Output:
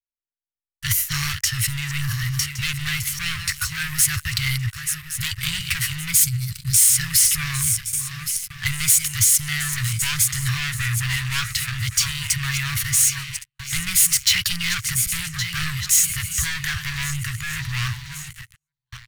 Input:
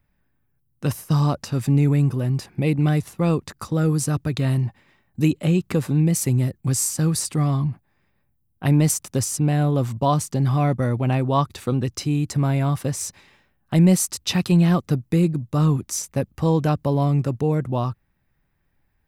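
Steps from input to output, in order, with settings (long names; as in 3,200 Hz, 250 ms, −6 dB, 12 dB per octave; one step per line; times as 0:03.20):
feedback delay that plays each chunk backwards 558 ms, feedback 57%, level −13 dB
gain on a spectral selection 0:06.14–0:06.87, 230–3,400 Hz −14 dB
noise gate with hold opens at −27 dBFS
parametric band 150 Hz −12.5 dB 1.5 octaves
automatic gain control gain up to 7 dB
leveller curve on the samples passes 5
elliptic band-stop filter 110–1,600 Hz, stop band 60 dB
formants moved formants +2 semitones
level −7 dB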